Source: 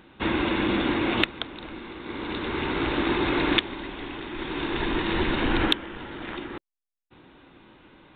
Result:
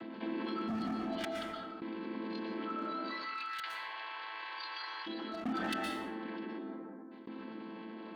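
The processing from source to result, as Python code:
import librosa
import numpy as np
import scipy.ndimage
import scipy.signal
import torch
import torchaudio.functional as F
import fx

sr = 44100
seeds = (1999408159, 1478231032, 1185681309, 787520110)

y = fx.chord_vocoder(x, sr, chord='minor triad', root=57)
y = fx.highpass(y, sr, hz=860.0, slope=24, at=(2.93, 5.06), fade=0.02)
y = fx.noise_reduce_blind(y, sr, reduce_db=18)
y = np.clip(y, -10.0 ** (-34.5 / 20.0), 10.0 ** (-34.5 / 20.0))
y = fx.tremolo_shape(y, sr, shape='saw_down', hz=0.55, depth_pct=95)
y = fx.rev_plate(y, sr, seeds[0], rt60_s=0.8, hf_ratio=0.5, predelay_ms=105, drr_db=3.5)
y = fx.env_flatten(y, sr, amount_pct=70)
y = y * 10.0 ** (2.0 / 20.0)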